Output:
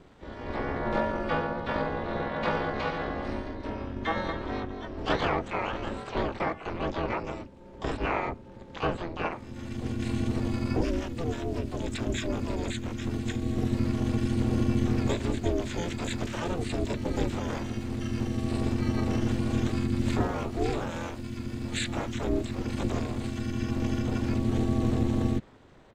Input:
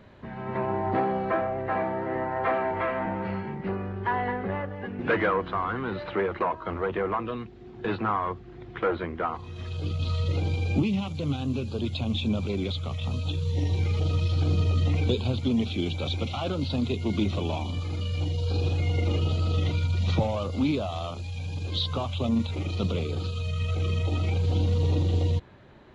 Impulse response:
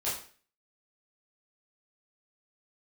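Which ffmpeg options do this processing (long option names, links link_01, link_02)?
-filter_complex "[0:a]asplit=4[link_01][link_02][link_03][link_04];[link_02]asetrate=22050,aresample=44100,atempo=2,volume=-1dB[link_05];[link_03]asetrate=29433,aresample=44100,atempo=1.49831,volume=-2dB[link_06];[link_04]asetrate=88200,aresample=44100,atempo=0.5,volume=-3dB[link_07];[link_01][link_05][link_06][link_07]amix=inputs=4:normalize=0,aeval=exprs='val(0)*sin(2*PI*170*n/s)':channel_layout=same,volume=-4dB"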